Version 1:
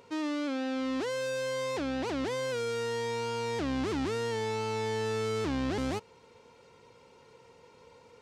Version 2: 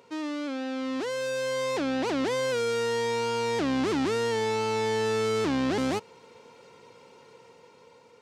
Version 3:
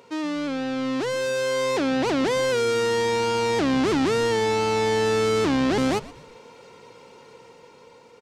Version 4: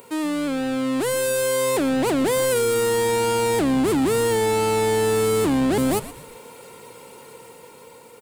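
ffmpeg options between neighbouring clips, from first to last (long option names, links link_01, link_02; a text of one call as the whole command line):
ffmpeg -i in.wav -af "highpass=140,dynaudnorm=framelen=390:gausssize=7:maxgain=5.5dB" out.wav
ffmpeg -i in.wav -filter_complex "[0:a]asplit=4[link_01][link_02][link_03][link_04];[link_02]adelay=120,afreqshift=-130,volume=-18.5dB[link_05];[link_03]adelay=240,afreqshift=-260,volume=-26dB[link_06];[link_04]adelay=360,afreqshift=-390,volume=-33.6dB[link_07];[link_01][link_05][link_06][link_07]amix=inputs=4:normalize=0,volume=5dB" out.wav
ffmpeg -i in.wav -filter_complex "[0:a]acrossover=split=100[link_01][link_02];[link_02]aexciter=amount=11.6:drive=4.2:freq=8300[link_03];[link_01][link_03]amix=inputs=2:normalize=0,asoftclip=type=tanh:threshold=-17dB,volume=4dB" out.wav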